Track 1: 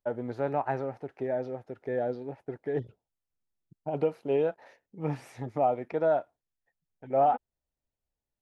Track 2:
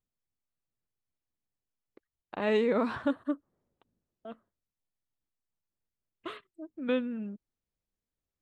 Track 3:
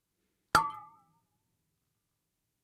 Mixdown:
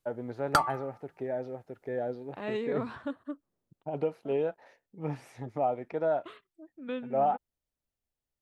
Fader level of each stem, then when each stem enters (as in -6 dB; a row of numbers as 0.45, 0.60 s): -3.0, -7.0, 0.0 dB; 0.00, 0.00, 0.00 s